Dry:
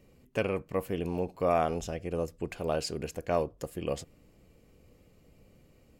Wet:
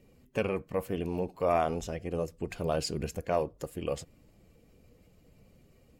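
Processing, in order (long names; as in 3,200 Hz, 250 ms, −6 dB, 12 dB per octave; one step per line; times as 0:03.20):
spectral magnitudes quantised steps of 15 dB
0:02.48–0:03.21: bass and treble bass +5 dB, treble +2 dB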